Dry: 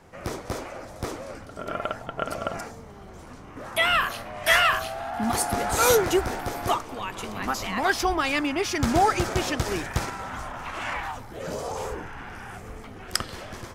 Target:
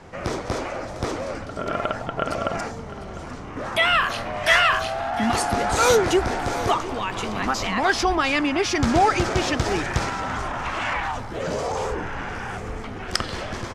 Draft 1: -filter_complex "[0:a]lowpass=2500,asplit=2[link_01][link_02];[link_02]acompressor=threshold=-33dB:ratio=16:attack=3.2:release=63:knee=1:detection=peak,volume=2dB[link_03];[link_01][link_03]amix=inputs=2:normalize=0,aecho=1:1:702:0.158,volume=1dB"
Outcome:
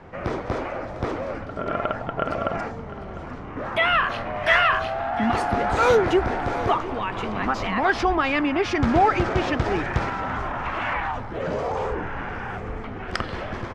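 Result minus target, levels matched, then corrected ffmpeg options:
8,000 Hz band −13.5 dB
-filter_complex "[0:a]lowpass=6800,asplit=2[link_01][link_02];[link_02]acompressor=threshold=-33dB:ratio=16:attack=3.2:release=63:knee=1:detection=peak,volume=2dB[link_03];[link_01][link_03]amix=inputs=2:normalize=0,aecho=1:1:702:0.158,volume=1dB"

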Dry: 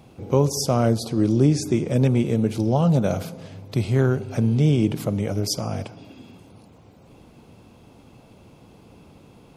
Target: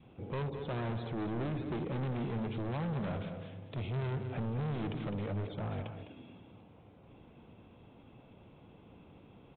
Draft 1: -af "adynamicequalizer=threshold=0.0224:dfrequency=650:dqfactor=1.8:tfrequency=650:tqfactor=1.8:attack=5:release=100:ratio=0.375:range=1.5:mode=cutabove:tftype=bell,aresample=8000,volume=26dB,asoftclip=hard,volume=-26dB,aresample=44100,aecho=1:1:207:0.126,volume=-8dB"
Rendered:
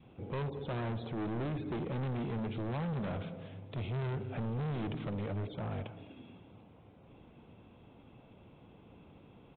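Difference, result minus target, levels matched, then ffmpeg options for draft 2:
echo-to-direct −8.5 dB
-af "adynamicequalizer=threshold=0.0224:dfrequency=650:dqfactor=1.8:tfrequency=650:tqfactor=1.8:attack=5:release=100:ratio=0.375:range=1.5:mode=cutabove:tftype=bell,aresample=8000,volume=26dB,asoftclip=hard,volume=-26dB,aresample=44100,aecho=1:1:207:0.335,volume=-8dB"

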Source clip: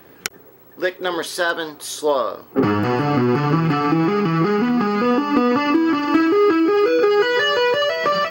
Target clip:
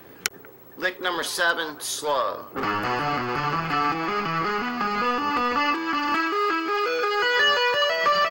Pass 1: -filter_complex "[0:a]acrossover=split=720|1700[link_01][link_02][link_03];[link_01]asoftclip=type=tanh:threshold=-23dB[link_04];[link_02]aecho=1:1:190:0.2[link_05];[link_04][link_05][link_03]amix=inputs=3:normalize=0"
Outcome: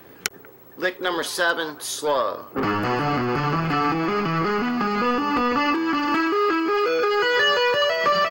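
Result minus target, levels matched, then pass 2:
soft clipping: distortion −4 dB
-filter_complex "[0:a]acrossover=split=720|1700[link_01][link_02][link_03];[link_01]asoftclip=type=tanh:threshold=-31.5dB[link_04];[link_02]aecho=1:1:190:0.2[link_05];[link_04][link_05][link_03]amix=inputs=3:normalize=0"

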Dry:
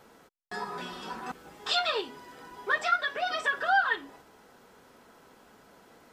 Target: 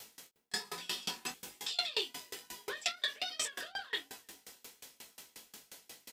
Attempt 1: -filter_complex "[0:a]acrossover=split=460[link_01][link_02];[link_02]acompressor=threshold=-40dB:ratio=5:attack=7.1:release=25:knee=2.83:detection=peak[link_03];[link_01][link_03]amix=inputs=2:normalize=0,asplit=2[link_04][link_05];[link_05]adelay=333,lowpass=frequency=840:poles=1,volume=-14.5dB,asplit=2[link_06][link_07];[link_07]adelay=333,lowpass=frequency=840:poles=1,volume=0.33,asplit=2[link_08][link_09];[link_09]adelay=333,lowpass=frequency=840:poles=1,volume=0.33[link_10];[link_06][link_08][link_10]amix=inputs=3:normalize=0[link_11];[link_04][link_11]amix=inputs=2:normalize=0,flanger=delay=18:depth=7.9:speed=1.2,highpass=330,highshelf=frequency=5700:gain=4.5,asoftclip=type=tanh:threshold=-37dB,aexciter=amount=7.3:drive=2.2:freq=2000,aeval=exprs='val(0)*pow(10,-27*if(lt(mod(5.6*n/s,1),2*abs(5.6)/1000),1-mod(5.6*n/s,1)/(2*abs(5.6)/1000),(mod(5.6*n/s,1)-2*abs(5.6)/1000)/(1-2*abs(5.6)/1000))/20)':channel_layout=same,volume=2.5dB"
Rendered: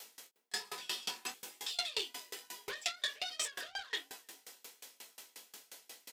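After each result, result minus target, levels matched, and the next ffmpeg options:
soft clipping: distortion +10 dB; 250 Hz band −4.0 dB
-filter_complex "[0:a]acrossover=split=460[link_01][link_02];[link_02]acompressor=threshold=-40dB:ratio=5:attack=7.1:release=25:knee=2.83:detection=peak[link_03];[link_01][link_03]amix=inputs=2:normalize=0,asplit=2[link_04][link_05];[link_05]adelay=333,lowpass=frequency=840:poles=1,volume=-14.5dB,asplit=2[link_06][link_07];[link_07]adelay=333,lowpass=frequency=840:poles=1,volume=0.33,asplit=2[link_08][link_09];[link_09]adelay=333,lowpass=frequency=840:poles=1,volume=0.33[link_10];[link_06][link_08][link_10]amix=inputs=3:normalize=0[link_11];[link_04][link_11]amix=inputs=2:normalize=0,flanger=delay=18:depth=7.9:speed=1.2,highpass=330,highshelf=frequency=5700:gain=4.5,asoftclip=type=tanh:threshold=-29dB,aexciter=amount=7.3:drive=2.2:freq=2000,aeval=exprs='val(0)*pow(10,-27*if(lt(mod(5.6*n/s,1),2*abs(5.6)/1000),1-mod(5.6*n/s,1)/(2*abs(5.6)/1000),(mod(5.6*n/s,1)-2*abs(5.6)/1000)/(1-2*abs(5.6)/1000))/20)':channel_layout=same,volume=2.5dB"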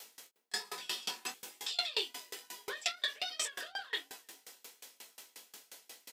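250 Hz band −4.5 dB
-filter_complex "[0:a]acrossover=split=460[link_01][link_02];[link_02]acompressor=threshold=-40dB:ratio=5:attack=7.1:release=25:knee=2.83:detection=peak[link_03];[link_01][link_03]amix=inputs=2:normalize=0,asplit=2[link_04][link_05];[link_05]adelay=333,lowpass=frequency=840:poles=1,volume=-14.5dB,asplit=2[link_06][link_07];[link_07]adelay=333,lowpass=frequency=840:poles=1,volume=0.33,asplit=2[link_08][link_09];[link_09]adelay=333,lowpass=frequency=840:poles=1,volume=0.33[link_10];[link_06][link_08][link_10]amix=inputs=3:normalize=0[link_11];[link_04][link_11]amix=inputs=2:normalize=0,flanger=delay=18:depth=7.9:speed=1.2,highshelf=frequency=5700:gain=4.5,asoftclip=type=tanh:threshold=-29dB,aexciter=amount=7.3:drive=2.2:freq=2000,aeval=exprs='val(0)*pow(10,-27*if(lt(mod(5.6*n/s,1),2*abs(5.6)/1000),1-mod(5.6*n/s,1)/(2*abs(5.6)/1000),(mod(5.6*n/s,1)-2*abs(5.6)/1000)/(1-2*abs(5.6)/1000))/20)':channel_layout=same,volume=2.5dB"

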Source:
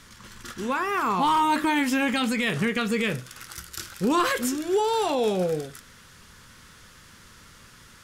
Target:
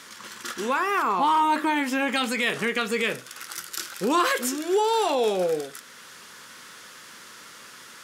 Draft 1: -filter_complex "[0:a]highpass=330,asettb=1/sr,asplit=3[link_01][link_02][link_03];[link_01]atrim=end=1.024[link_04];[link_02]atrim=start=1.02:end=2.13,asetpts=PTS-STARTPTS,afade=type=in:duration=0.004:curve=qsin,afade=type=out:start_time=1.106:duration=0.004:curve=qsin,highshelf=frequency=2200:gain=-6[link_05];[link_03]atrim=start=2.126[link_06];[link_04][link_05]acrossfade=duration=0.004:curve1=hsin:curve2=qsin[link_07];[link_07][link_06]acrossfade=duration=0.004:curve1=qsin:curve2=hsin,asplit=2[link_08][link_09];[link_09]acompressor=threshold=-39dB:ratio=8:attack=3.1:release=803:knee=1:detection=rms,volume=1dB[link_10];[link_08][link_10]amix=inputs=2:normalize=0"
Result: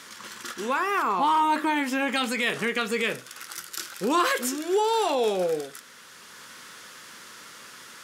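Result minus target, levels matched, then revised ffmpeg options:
downward compressor: peak gain reduction +6.5 dB
-filter_complex "[0:a]highpass=330,asettb=1/sr,asplit=3[link_01][link_02][link_03];[link_01]atrim=end=1.024[link_04];[link_02]atrim=start=1.02:end=2.13,asetpts=PTS-STARTPTS,afade=type=in:duration=0.004:curve=qsin,afade=type=out:start_time=1.106:duration=0.004:curve=qsin,highshelf=frequency=2200:gain=-6[link_05];[link_03]atrim=start=2.126[link_06];[link_04][link_05]acrossfade=duration=0.004:curve1=hsin:curve2=qsin[link_07];[link_07][link_06]acrossfade=duration=0.004:curve1=qsin:curve2=hsin,asplit=2[link_08][link_09];[link_09]acompressor=threshold=-31.5dB:ratio=8:attack=3.1:release=803:knee=1:detection=rms,volume=1dB[link_10];[link_08][link_10]amix=inputs=2:normalize=0"

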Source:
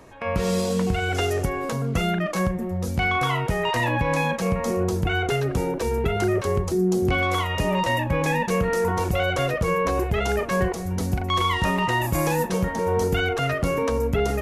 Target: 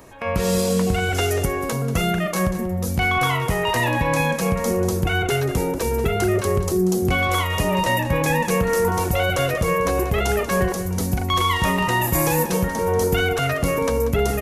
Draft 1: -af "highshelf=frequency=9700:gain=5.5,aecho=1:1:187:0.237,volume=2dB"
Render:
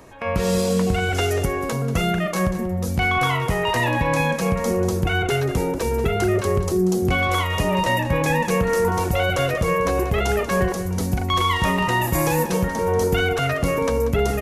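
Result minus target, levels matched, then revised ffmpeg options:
8,000 Hz band −3.0 dB
-af "highshelf=frequency=9700:gain=13.5,aecho=1:1:187:0.237,volume=2dB"

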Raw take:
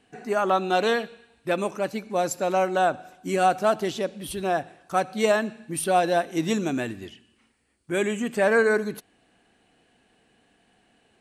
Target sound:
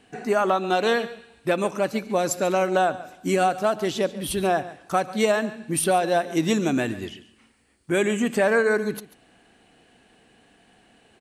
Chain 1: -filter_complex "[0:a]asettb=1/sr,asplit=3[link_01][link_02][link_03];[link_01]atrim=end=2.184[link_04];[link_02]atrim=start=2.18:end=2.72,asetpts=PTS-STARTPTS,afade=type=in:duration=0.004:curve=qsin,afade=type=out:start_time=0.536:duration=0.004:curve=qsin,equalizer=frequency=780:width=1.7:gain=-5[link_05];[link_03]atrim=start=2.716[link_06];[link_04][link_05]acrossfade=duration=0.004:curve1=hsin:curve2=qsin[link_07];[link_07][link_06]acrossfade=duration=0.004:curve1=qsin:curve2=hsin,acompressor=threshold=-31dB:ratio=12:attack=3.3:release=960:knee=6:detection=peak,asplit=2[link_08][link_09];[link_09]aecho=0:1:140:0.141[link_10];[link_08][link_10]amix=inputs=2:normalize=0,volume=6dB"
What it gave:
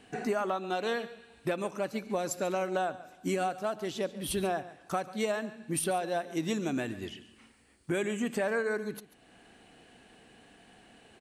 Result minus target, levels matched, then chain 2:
downward compressor: peak gain reduction +10.5 dB
-filter_complex "[0:a]asettb=1/sr,asplit=3[link_01][link_02][link_03];[link_01]atrim=end=2.184[link_04];[link_02]atrim=start=2.18:end=2.72,asetpts=PTS-STARTPTS,afade=type=in:duration=0.004:curve=qsin,afade=type=out:start_time=0.536:duration=0.004:curve=qsin,equalizer=frequency=780:width=1.7:gain=-5[link_05];[link_03]atrim=start=2.716[link_06];[link_04][link_05]acrossfade=duration=0.004:curve1=hsin:curve2=qsin[link_07];[link_07][link_06]acrossfade=duration=0.004:curve1=qsin:curve2=hsin,acompressor=threshold=-19.5dB:ratio=12:attack=3.3:release=960:knee=6:detection=peak,asplit=2[link_08][link_09];[link_09]aecho=0:1:140:0.141[link_10];[link_08][link_10]amix=inputs=2:normalize=0,volume=6dB"

